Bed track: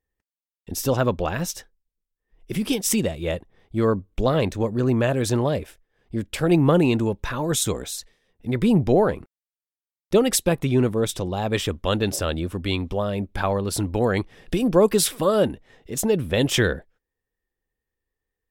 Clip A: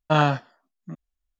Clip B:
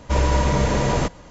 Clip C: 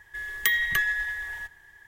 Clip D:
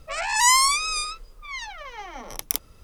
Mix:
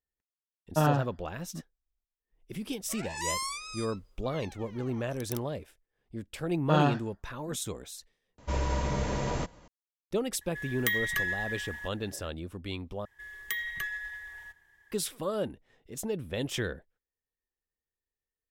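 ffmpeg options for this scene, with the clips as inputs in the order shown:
ffmpeg -i bed.wav -i cue0.wav -i cue1.wav -i cue2.wav -i cue3.wav -filter_complex "[1:a]asplit=2[link_01][link_02];[3:a]asplit=2[link_03][link_04];[0:a]volume=-12.5dB[link_05];[link_01]tiltshelf=frequency=1300:gain=5.5[link_06];[link_02]flanger=delay=18.5:depth=2.5:speed=1.6[link_07];[link_05]asplit=3[link_08][link_09][link_10];[link_08]atrim=end=8.384[link_11];[2:a]atrim=end=1.3,asetpts=PTS-STARTPTS,volume=-11dB[link_12];[link_09]atrim=start=9.676:end=13.054[link_13];[link_04]atrim=end=1.87,asetpts=PTS-STARTPTS,volume=-10.5dB[link_14];[link_10]atrim=start=14.916[link_15];[link_06]atrim=end=1.39,asetpts=PTS-STARTPTS,volume=-9.5dB,afade=type=in:duration=0.004:curve=hsin,afade=type=out:start_time=1.386:duration=0.004:curve=hsin,adelay=660[link_16];[4:a]atrim=end=2.83,asetpts=PTS-STARTPTS,volume=-15.5dB,afade=type=in:duration=0.004:curve=hsin,afade=type=out:start_time=2.826:duration=0.004:curve=hsin,adelay=2810[link_17];[link_07]atrim=end=1.39,asetpts=PTS-STARTPTS,volume=-4.5dB,afade=type=in:duration=0.004:curve=hsin,afade=type=out:start_time=1.386:duration=0.004:curve=hsin,adelay=6590[link_18];[link_03]atrim=end=1.87,asetpts=PTS-STARTPTS,volume=-5.5dB,afade=type=in:duration=0.004:curve=hsin,afade=type=out:start_time=1.866:duration=0.004:curve=hsin,adelay=10410[link_19];[link_11][link_12]acrossfade=duration=0.004:curve1=hsin:curve2=hsin[link_20];[link_20][link_13]acrossfade=duration=0.004:curve1=hsin:curve2=hsin[link_21];[link_21][link_14]acrossfade=duration=0.004:curve1=hsin:curve2=hsin[link_22];[link_22][link_15]acrossfade=duration=0.004:curve1=hsin:curve2=hsin[link_23];[link_23][link_16][link_17][link_18][link_19]amix=inputs=5:normalize=0" out.wav

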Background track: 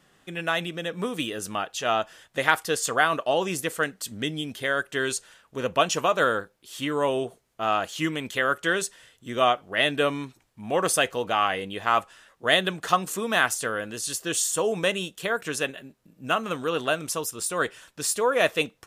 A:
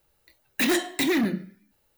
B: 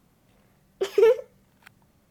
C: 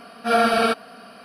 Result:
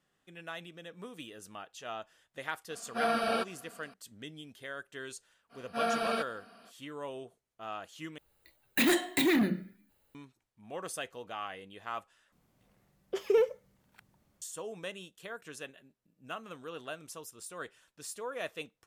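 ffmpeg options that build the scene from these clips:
ffmpeg -i bed.wav -i cue0.wav -i cue1.wav -i cue2.wav -filter_complex "[3:a]asplit=2[link_01][link_02];[0:a]volume=-16.5dB[link_03];[link_02]equalizer=frequency=86:width=1.5:gain=-3.5[link_04];[1:a]equalizer=frequency=5600:width_type=o:width=0.31:gain=-9[link_05];[link_03]asplit=3[link_06][link_07][link_08];[link_06]atrim=end=8.184[link_09];[link_05]atrim=end=1.97,asetpts=PTS-STARTPTS,volume=-3dB[link_10];[link_07]atrim=start=10.146:end=12.324[link_11];[2:a]atrim=end=2.1,asetpts=PTS-STARTPTS,volume=-8dB[link_12];[link_08]atrim=start=14.416[link_13];[link_01]atrim=end=1.24,asetpts=PTS-STARTPTS,volume=-12dB,afade=type=in:duration=0.004:curve=hsin,afade=type=out:start_time=1.236:duration=0.004:curve=hsin,adelay=2700[link_14];[link_04]atrim=end=1.24,asetpts=PTS-STARTPTS,volume=-13dB,afade=type=in:duration=0.05,afade=type=out:start_time=1.19:duration=0.05,adelay=242109S[link_15];[link_09][link_10]acrossfade=duration=0.004:curve1=hsin:curve2=hsin[link_16];[link_16][link_11]acrossfade=duration=0.004:curve1=hsin:curve2=hsin[link_17];[link_17][link_12]acrossfade=duration=0.004:curve1=hsin:curve2=hsin[link_18];[link_18][link_13]acrossfade=duration=0.004:curve1=hsin:curve2=hsin[link_19];[link_19][link_14][link_15]amix=inputs=3:normalize=0" out.wav

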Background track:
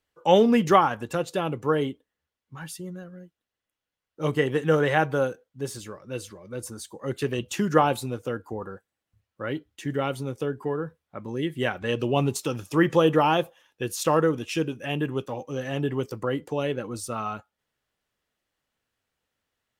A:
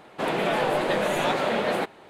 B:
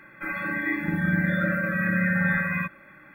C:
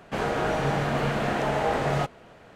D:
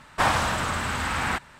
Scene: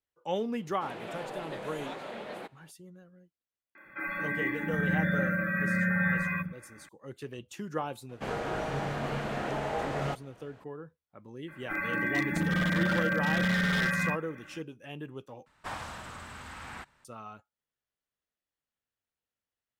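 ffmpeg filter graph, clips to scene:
ffmpeg -i bed.wav -i cue0.wav -i cue1.wav -i cue2.wav -i cue3.wav -filter_complex "[2:a]asplit=2[link_01][link_02];[0:a]volume=-14dB[link_03];[link_01]acrossover=split=230|5700[link_04][link_05][link_06];[link_06]adelay=30[link_07];[link_04]adelay=100[link_08];[link_08][link_05][link_07]amix=inputs=3:normalize=0[link_09];[link_02]aeval=exprs='0.1*(abs(mod(val(0)/0.1+3,4)-2)-1)':channel_layout=same[link_10];[link_03]asplit=2[link_11][link_12];[link_11]atrim=end=15.464[link_13];[4:a]atrim=end=1.59,asetpts=PTS-STARTPTS,volume=-17dB[link_14];[link_12]atrim=start=17.046[link_15];[1:a]atrim=end=2.09,asetpts=PTS-STARTPTS,volume=-16dB,afade=type=in:duration=0.004:curve=hsin,afade=type=out:start_time=2.086:duration=0.004:curve=hsin,adelay=620[link_16];[link_09]atrim=end=3.14,asetpts=PTS-STARTPTS,volume=-4dB,afade=type=in:duration=0.004:curve=hsin,afade=type=out:start_time=3.136:duration=0.004:curve=hsin,adelay=3750[link_17];[3:a]atrim=end=2.55,asetpts=PTS-STARTPTS,volume=-7.5dB,afade=type=in:duration=0.004:curve=hsin,afade=type=out:start_time=2.546:duration=0.004:curve=hsin,adelay=8090[link_18];[link_10]atrim=end=3.14,asetpts=PTS-STARTPTS,volume=-2dB,afade=type=in:duration=0.004:curve=hsin,afade=type=out:start_time=3.136:duration=0.004:curve=hsin,adelay=11480[link_19];[link_13][link_14]acrossfade=duration=0.004:curve1=hsin:curve2=hsin[link_20];[link_20][link_15]acrossfade=duration=0.004:curve1=hsin:curve2=hsin[link_21];[link_21][link_16][link_17][link_18][link_19]amix=inputs=5:normalize=0" out.wav

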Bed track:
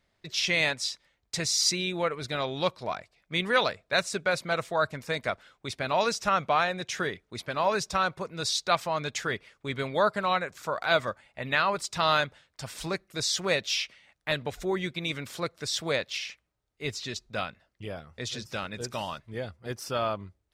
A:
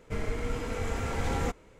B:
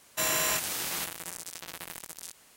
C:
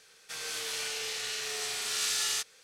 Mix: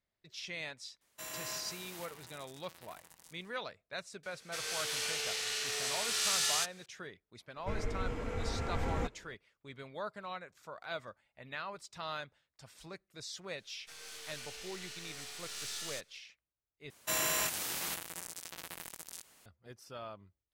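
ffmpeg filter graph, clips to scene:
ffmpeg -i bed.wav -i cue0.wav -i cue1.wav -i cue2.wav -filter_complex "[2:a]asplit=2[link_01][link_02];[3:a]asplit=2[link_03][link_04];[0:a]volume=-16.5dB[link_05];[link_01]asplit=2[link_06][link_07];[link_07]adelay=150,lowpass=frequency=2000:poles=1,volume=-3dB,asplit=2[link_08][link_09];[link_09]adelay=150,lowpass=frequency=2000:poles=1,volume=0.47,asplit=2[link_10][link_11];[link_11]adelay=150,lowpass=frequency=2000:poles=1,volume=0.47,asplit=2[link_12][link_13];[link_13]adelay=150,lowpass=frequency=2000:poles=1,volume=0.47,asplit=2[link_14][link_15];[link_15]adelay=150,lowpass=frequency=2000:poles=1,volume=0.47,asplit=2[link_16][link_17];[link_17]adelay=150,lowpass=frequency=2000:poles=1,volume=0.47[link_18];[link_06][link_08][link_10][link_12][link_14][link_16][link_18]amix=inputs=7:normalize=0[link_19];[1:a]highshelf=frequency=4500:gain=-10[link_20];[link_04]aeval=exprs='if(lt(val(0),0),0.447*val(0),val(0))':channel_layout=same[link_21];[link_05]asplit=2[link_22][link_23];[link_22]atrim=end=16.904[link_24];[link_02]atrim=end=2.56,asetpts=PTS-STARTPTS,volume=-4.5dB[link_25];[link_23]atrim=start=19.456[link_26];[link_19]atrim=end=2.56,asetpts=PTS-STARTPTS,volume=-16.5dB,afade=type=in:duration=0.004:curve=hsin,afade=type=out:start_time=2.556:duration=0.004:curve=hsin,adelay=1010[link_27];[link_03]atrim=end=2.63,asetpts=PTS-STARTPTS,volume=-1dB,afade=type=in:duration=0.004:curve=hsin,afade=type=out:start_time=2.626:duration=0.004:curve=hsin,adelay=4230[link_28];[link_20]atrim=end=1.79,asetpts=PTS-STARTPTS,volume=-4.5dB,afade=type=in:duration=0.004:curve=hsin,afade=type=out:start_time=1.786:duration=0.004:curve=hsin,adelay=7560[link_29];[link_21]atrim=end=2.63,asetpts=PTS-STARTPTS,volume=-9.5dB,afade=type=in:duration=0.004:curve=hsin,afade=type=out:start_time=2.626:duration=0.004:curve=hsin,adelay=13580[link_30];[link_24][link_25]acrossfade=duration=0.004:curve1=hsin:curve2=hsin[link_31];[link_31][link_26]acrossfade=duration=0.004:curve1=hsin:curve2=hsin[link_32];[link_32][link_27][link_28][link_29][link_30]amix=inputs=5:normalize=0" out.wav

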